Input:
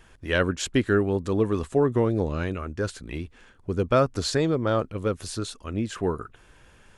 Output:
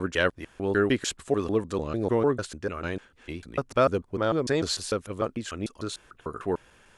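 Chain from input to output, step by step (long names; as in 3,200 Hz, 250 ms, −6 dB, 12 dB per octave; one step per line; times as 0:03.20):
slices reordered back to front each 149 ms, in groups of 4
low-shelf EQ 190 Hz −8.5 dB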